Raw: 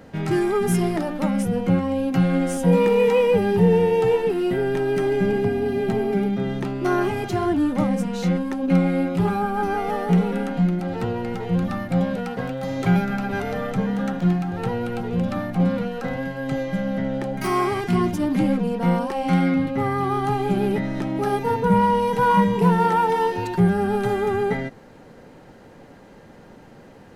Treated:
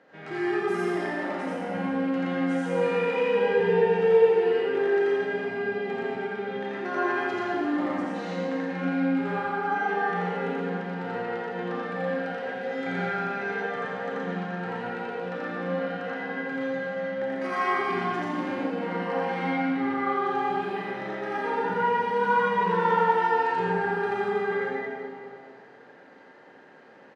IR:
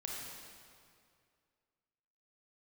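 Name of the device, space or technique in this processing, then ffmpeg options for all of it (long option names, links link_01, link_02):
station announcement: -filter_complex "[0:a]highpass=350,lowpass=4100,equalizer=frequency=1700:width_type=o:width=0.45:gain=6.5,aecho=1:1:84.55|122.4|174.9:0.891|0.708|0.282[link_01];[1:a]atrim=start_sample=2205[link_02];[link_01][link_02]afir=irnorm=-1:irlink=0,asettb=1/sr,asplit=3[link_03][link_04][link_05];[link_03]atrim=end=12.204[link_06];[link_04]atrim=start=12.2:end=13.78,asetpts=PTS-STARTPTS,afade=type=in:duration=0.004:curve=qsin,afade=type=out:start_time=1.576:duration=0.004:curve=qsin,bandreject=frequency=1100:width=5.9[link_07];[link_05]atrim=start=13.776[link_08];[link_06][link_07]acrossfade=duration=0.004:curve1=hsin:curve2=qsin[link_09];[link_09][link_08]acrossfade=duration=0.004:curve1=qsin:curve2=hsin,volume=-7dB"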